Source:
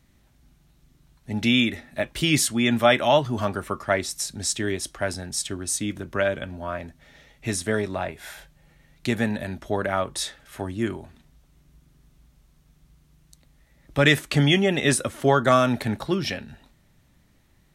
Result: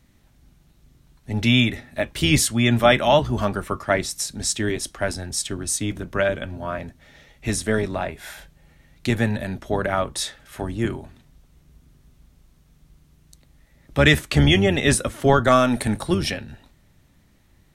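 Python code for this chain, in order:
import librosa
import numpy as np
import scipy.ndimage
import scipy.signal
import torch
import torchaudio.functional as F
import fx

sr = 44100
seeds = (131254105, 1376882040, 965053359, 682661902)

y = fx.octave_divider(x, sr, octaves=1, level_db=-4.0)
y = fx.peak_eq(y, sr, hz=9100.0, db=15.0, octaves=0.42, at=(15.72, 16.31))
y = y * librosa.db_to_amplitude(2.0)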